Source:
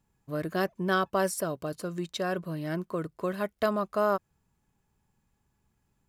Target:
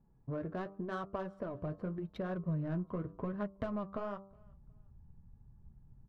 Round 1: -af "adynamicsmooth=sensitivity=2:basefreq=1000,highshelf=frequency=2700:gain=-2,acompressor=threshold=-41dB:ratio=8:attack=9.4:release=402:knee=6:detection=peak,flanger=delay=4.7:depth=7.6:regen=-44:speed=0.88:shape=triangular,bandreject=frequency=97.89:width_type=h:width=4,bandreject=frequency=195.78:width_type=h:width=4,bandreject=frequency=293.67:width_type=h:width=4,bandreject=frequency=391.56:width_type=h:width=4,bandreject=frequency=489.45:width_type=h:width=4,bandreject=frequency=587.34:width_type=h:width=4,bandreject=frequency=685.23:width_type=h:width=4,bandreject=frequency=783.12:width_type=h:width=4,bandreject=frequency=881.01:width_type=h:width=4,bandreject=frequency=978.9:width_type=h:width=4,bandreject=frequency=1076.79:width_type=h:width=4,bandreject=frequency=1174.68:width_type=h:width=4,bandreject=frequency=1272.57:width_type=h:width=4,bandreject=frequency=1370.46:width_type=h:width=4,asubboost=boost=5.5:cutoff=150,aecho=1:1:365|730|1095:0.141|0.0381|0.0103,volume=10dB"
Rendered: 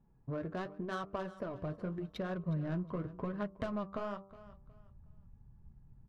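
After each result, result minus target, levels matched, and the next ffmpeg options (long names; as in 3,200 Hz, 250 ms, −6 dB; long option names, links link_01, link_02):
echo-to-direct +11.5 dB; 4,000 Hz band +6.0 dB
-af "adynamicsmooth=sensitivity=2:basefreq=1000,highshelf=frequency=2700:gain=-2,acompressor=threshold=-41dB:ratio=8:attack=9.4:release=402:knee=6:detection=peak,flanger=delay=4.7:depth=7.6:regen=-44:speed=0.88:shape=triangular,bandreject=frequency=97.89:width_type=h:width=4,bandreject=frequency=195.78:width_type=h:width=4,bandreject=frequency=293.67:width_type=h:width=4,bandreject=frequency=391.56:width_type=h:width=4,bandreject=frequency=489.45:width_type=h:width=4,bandreject=frequency=587.34:width_type=h:width=4,bandreject=frequency=685.23:width_type=h:width=4,bandreject=frequency=783.12:width_type=h:width=4,bandreject=frequency=881.01:width_type=h:width=4,bandreject=frequency=978.9:width_type=h:width=4,bandreject=frequency=1076.79:width_type=h:width=4,bandreject=frequency=1174.68:width_type=h:width=4,bandreject=frequency=1272.57:width_type=h:width=4,bandreject=frequency=1370.46:width_type=h:width=4,asubboost=boost=5.5:cutoff=150,aecho=1:1:365|730:0.0376|0.0101,volume=10dB"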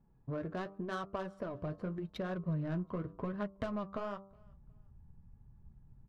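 4,000 Hz band +6.0 dB
-af "adynamicsmooth=sensitivity=2:basefreq=1000,highshelf=frequency=2700:gain=-12.5,acompressor=threshold=-41dB:ratio=8:attack=9.4:release=402:knee=6:detection=peak,flanger=delay=4.7:depth=7.6:regen=-44:speed=0.88:shape=triangular,bandreject=frequency=97.89:width_type=h:width=4,bandreject=frequency=195.78:width_type=h:width=4,bandreject=frequency=293.67:width_type=h:width=4,bandreject=frequency=391.56:width_type=h:width=4,bandreject=frequency=489.45:width_type=h:width=4,bandreject=frequency=587.34:width_type=h:width=4,bandreject=frequency=685.23:width_type=h:width=4,bandreject=frequency=783.12:width_type=h:width=4,bandreject=frequency=881.01:width_type=h:width=4,bandreject=frequency=978.9:width_type=h:width=4,bandreject=frequency=1076.79:width_type=h:width=4,bandreject=frequency=1174.68:width_type=h:width=4,bandreject=frequency=1272.57:width_type=h:width=4,bandreject=frequency=1370.46:width_type=h:width=4,asubboost=boost=5.5:cutoff=150,aecho=1:1:365|730:0.0376|0.0101,volume=10dB"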